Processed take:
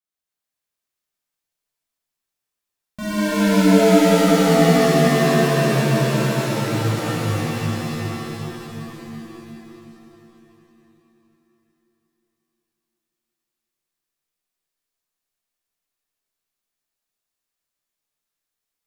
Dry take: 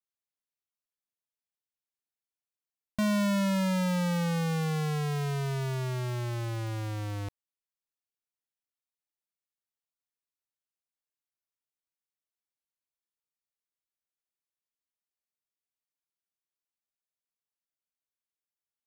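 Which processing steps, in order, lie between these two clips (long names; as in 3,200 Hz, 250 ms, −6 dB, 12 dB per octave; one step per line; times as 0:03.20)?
echo with a time of its own for lows and highs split 560 Hz, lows 359 ms, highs 175 ms, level −5 dB
reverb with rising layers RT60 3.4 s, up +7 semitones, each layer −2 dB, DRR −10 dB
level −3 dB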